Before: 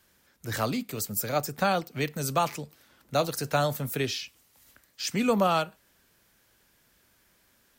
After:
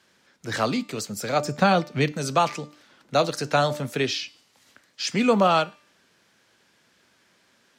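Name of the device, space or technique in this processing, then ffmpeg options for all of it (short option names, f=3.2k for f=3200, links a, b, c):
exciter from parts: -filter_complex "[0:a]highpass=150,lowpass=5.6k,bandreject=f=297.1:t=h:w=4,bandreject=f=594.2:t=h:w=4,bandreject=f=891.3:t=h:w=4,bandreject=f=1.1884k:t=h:w=4,bandreject=f=1.4855k:t=h:w=4,bandreject=f=1.7826k:t=h:w=4,bandreject=f=2.0797k:t=h:w=4,bandreject=f=2.3768k:t=h:w=4,bandreject=f=2.6739k:t=h:w=4,bandreject=f=2.971k:t=h:w=4,bandreject=f=3.2681k:t=h:w=4,bandreject=f=3.5652k:t=h:w=4,bandreject=f=3.8623k:t=h:w=4,bandreject=f=4.1594k:t=h:w=4,bandreject=f=4.4565k:t=h:w=4,bandreject=f=4.7536k:t=h:w=4,bandreject=f=5.0507k:t=h:w=4,bandreject=f=5.3478k:t=h:w=4,bandreject=f=5.6449k:t=h:w=4,bandreject=f=5.942k:t=h:w=4,bandreject=f=6.2391k:t=h:w=4,bandreject=f=6.5362k:t=h:w=4,bandreject=f=6.8333k:t=h:w=4,bandreject=f=7.1304k:t=h:w=4,bandreject=f=7.4275k:t=h:w=4,bandreject=f=7.7246k:t=h:w=4,bandreject=f=8.0217k:t=h:w=4,bandreject=f=8.3188k:t=h:w=4,asettb=1/sr,asplit=3[a][b][c];[a]atrim=end=1.454[d];[b]atrim=start=1.45:end=2.12,asetpts=PTS-STARTPTS,afade=t=in:d=0.004:c=qsin,afade=t=out:st=0.666:d=0.004:c=qsin,lowshelf=f=180:g=11.5[e];[c]atrim=start=2.116[f];[d][e]acrossfade=d=0.004:c1=hsin:c2=qsin[g];[g][f]acrossfade=d=0.004:c1=qsin:c2=hsin,asplit=2[h][i];[i]highpass=f=4.7k:p=1,asoftclip=type=tanh:threshold=-31dB,volume=-9dB[j];[h][j]amix=inputs=2:normalize=0,volume=5dB"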